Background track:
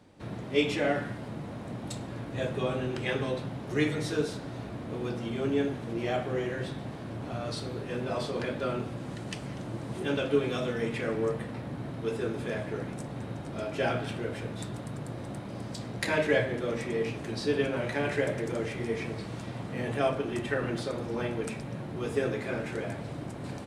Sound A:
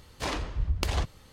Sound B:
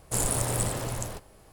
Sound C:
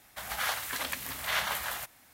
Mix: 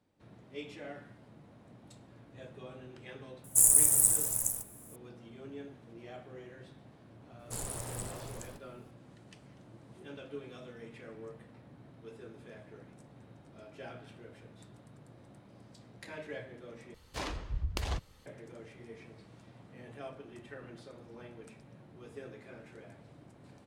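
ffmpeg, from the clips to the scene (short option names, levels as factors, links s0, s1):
-filter_complex "[2:a]asplit=2[s0][s1];[0:a]volume=0.133[s2];[s0]aexciter=amount=8.4:drive=9.4:freq=6400[s3];[s2]asplit=2[s4][s5];[s4]atrim=end=16.944[s6];[1:a]atrim=end=1.32,asetpts=PTS-STARTPTS,volume=0.473[s7];[s5]atrim=start=18.256[s8];[s3]atrim=end=1.52,asetpts=PTS-STARTPTS,volume=0.188,afade=t=in:d=0.004:c=hsin,afade=t=out:st=1.516:d=0.004:c=hsin,adelay=3440[s9];[s1]atrim=end=1.52,asetpts=PTS-STARTPTS,volume=0.237,afade=t=in:d=0.004:c=hsin,afade=t=out:st=1.516:d=0.004:c=hsin,adelay=7390[s10];[s6][s7]acrossfade=d=0.004:c1=hsin:c2=hsin[s11];[s11][s8]acrossfade=d=0.004:c1=hsin:c2=hsin[s12];[s12][s9][s10]amix=inputs=3:normalize=0"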